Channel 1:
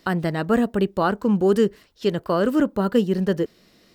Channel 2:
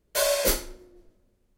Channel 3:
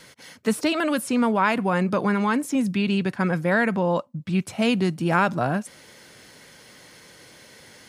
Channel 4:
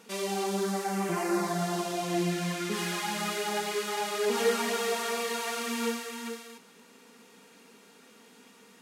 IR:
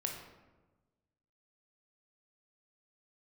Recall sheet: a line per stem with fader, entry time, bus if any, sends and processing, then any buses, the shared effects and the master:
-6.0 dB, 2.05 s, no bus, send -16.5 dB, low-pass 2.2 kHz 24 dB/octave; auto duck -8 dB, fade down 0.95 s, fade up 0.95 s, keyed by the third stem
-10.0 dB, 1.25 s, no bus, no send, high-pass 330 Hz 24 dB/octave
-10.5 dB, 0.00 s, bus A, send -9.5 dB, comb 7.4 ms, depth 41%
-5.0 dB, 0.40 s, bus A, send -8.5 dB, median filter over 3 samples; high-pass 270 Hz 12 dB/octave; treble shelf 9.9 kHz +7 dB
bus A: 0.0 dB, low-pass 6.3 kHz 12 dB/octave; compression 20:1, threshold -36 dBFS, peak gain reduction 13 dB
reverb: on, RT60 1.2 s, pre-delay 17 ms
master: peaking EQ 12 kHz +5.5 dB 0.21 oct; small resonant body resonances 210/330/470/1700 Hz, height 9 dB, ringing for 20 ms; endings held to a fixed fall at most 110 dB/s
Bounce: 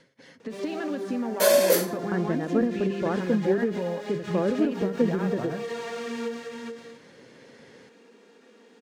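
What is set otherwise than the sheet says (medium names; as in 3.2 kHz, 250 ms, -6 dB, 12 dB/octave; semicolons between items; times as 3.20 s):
stem 2 -10.0 dB -> -0.5 dB; reverb return -9.5 dB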